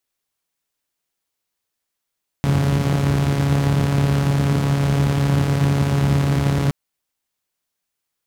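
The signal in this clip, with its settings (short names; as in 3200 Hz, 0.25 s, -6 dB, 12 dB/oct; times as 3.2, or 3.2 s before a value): four-cylinder engine model, steady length 4.27 s, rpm 4200, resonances 92/140 Hz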